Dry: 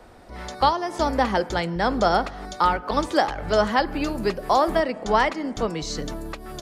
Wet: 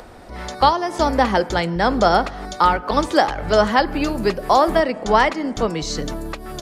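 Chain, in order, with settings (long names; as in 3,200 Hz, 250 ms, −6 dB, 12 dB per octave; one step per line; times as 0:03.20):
upward compression, threshold −41 dBFS
level +4.5 dB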